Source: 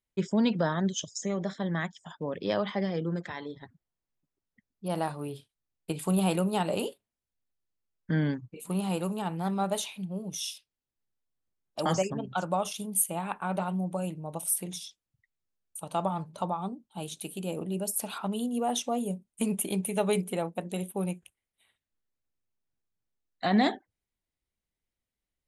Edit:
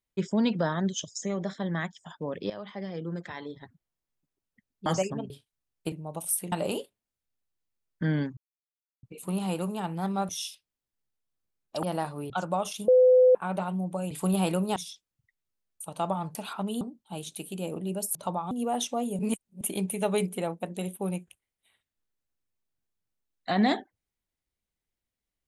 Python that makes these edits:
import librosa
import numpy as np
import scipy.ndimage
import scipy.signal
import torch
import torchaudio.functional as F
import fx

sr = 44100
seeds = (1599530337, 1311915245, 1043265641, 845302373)

y = fx.edit(x, sr, fx.fade_in_from(start_s=2.5, length_s=0.97, floor_db=-14.5),
    fx.swap(start_s=4.86, length_s=0.47, other_s=11.86, other_length_s=0.44),
    fx.swap(start_s=5.95, length_s=0.65, other_s=14.11, other_length_s=0.6),
    fx.insert_silence(at_s=8.45, length_s=0.66),
    fx.cut(start_s=9.71, length_s=0.61),
    fx.bleep(start_s=12.88, length_s=0.47, hz=507.0, db=-14.5),
    fx.swap(start_s=16.3, length_s=0.36, other_s=18.0, other_length_s=0.46),
    fx.reverse_span(start_s=19.14, length_s=0.42), tone=tone)